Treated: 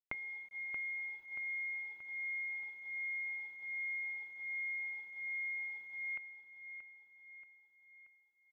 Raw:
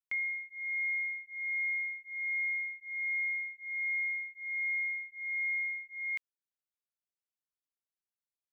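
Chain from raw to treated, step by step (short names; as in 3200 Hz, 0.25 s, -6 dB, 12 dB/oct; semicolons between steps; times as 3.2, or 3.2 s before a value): notch 1800 Hz, Q 5.1; treble ducked by the level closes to 2200 Hz, closed at -36 dBFS; high shelf 2000 Hz -11 dB; notches 60/120/180/240/300/360/420/480/540/600 Hz; transient shaper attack +6 dB, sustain -3 dB; compressor 3:1, threshold -49 dBFS, peak gain reduction 10.5 dB; bit-crush 11-bit; air absorption 480 m; feedback echo 0.63 s, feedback 52%, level -10 dB; gain +11.5 dB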